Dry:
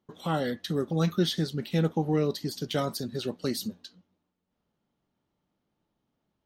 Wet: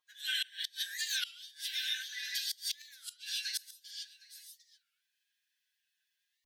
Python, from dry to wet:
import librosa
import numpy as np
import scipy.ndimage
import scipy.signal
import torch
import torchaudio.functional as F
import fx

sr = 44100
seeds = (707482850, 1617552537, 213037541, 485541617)

p1 = fx.brickwall_highpass(x, sr, low_hz=860.0)
p2 = fx.doubler(p1, sr, ms=12.0, db=-4.5)
p3 = p2 + fx.echo_single(p2, sr, ms=761, db=-20.5, dry=0)
p4 = fx.dynamic_eq(p3, sr, hz=3400.0, q=6.3, threshold_db=-51.0, ratio=4.0, max_db=5)
p5 = fx.pitch_keep_formants(p4, sr, semitones=10.5)
p6 = 10.0 ** (-26.5 / 20.0) * np.tanh(p5 / 10.0 ** (-26.5 / 20.0))
p7 = p5 + (p6 * librosa.db_to_amplitude(-10.5))
p8 = fx.peak_eq(p7, sr, hz=1900.0, db=-5.5, octaves=0.85)
p9 = fx.rev_gated(p8, sr, seeds[0], gate_ms=180, shape='rising', drr_db=-2.0)
p10 = fx.gate_flip(p9, sr, shuts_db=-22.0, range_db=-25)
y = fx.record_warp(p10, sr, rpm=33.33, depth_cents=250.0)